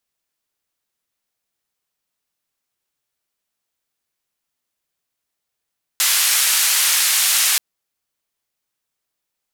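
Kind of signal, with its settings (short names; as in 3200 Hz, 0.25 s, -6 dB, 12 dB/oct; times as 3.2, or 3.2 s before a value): noise band 1500–13000 Hz, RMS -16.5 dBFS 1.58 s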